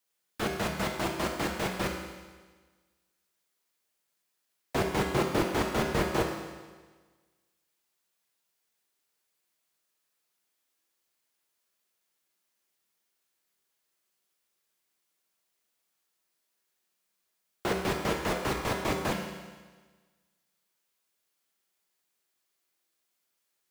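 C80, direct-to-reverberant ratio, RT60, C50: 6.0 dB, 1.0 dB, 1.4 s, 4.0 dB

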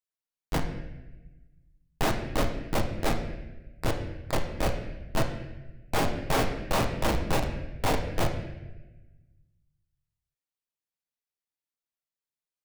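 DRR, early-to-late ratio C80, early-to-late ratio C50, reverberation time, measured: 3.0 dB, 9.0 dB, 7.0 dB, 1.1 s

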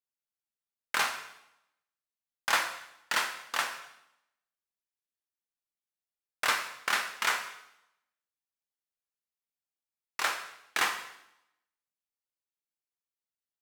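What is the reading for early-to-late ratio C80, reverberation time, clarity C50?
11.0 dB, 0.80 s, 8.0 dB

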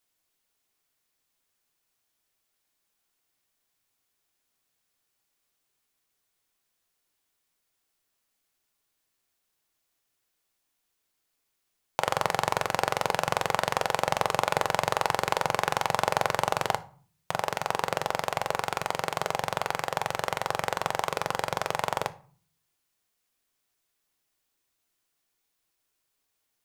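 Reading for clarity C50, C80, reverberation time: 19.0 dB, 23.5 dB, 0.45 s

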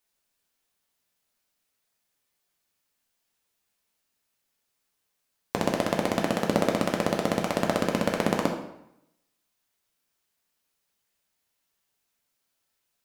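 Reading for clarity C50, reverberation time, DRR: 6.5 dB, 0.80 s, 1.0 dB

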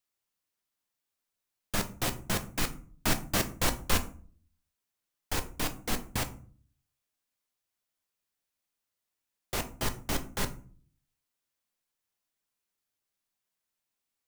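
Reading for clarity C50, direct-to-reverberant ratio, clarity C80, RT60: 15.0 dB, 7.0 dB, 19.5 dB, 0.45 s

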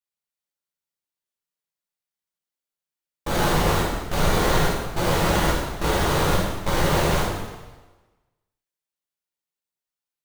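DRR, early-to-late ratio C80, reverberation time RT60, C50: -6.0 dB, 3.5 dB, 1.2 s, 0.5 dB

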